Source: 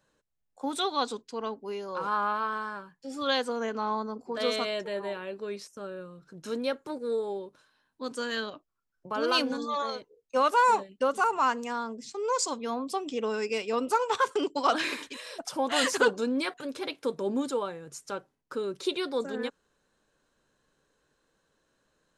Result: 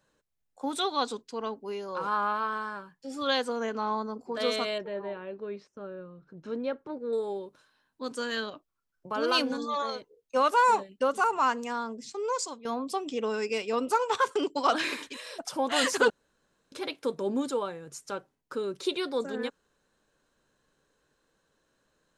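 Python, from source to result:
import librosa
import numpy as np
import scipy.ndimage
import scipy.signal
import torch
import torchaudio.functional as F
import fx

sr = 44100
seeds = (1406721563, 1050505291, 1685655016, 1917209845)

y = fx.spacing_loss(x, sr, db_at_10k=30, at=(4.78, 7.13))
y = fx.edit(y, sr, fx.fade_out_to(start_s=12.2, length_s=0.45, floor_db=-13.5),
    fx.room_tone_fill(start_s=16.1, length_s=0.62), tone=tone)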